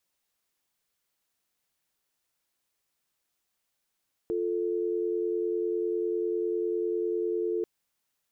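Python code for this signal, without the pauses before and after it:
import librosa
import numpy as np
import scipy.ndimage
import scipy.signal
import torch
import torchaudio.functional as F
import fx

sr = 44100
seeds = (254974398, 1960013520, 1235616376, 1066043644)

y = fx.call_progress(sr, length_s=3.34, kind='dial tone', level_db=-29.0)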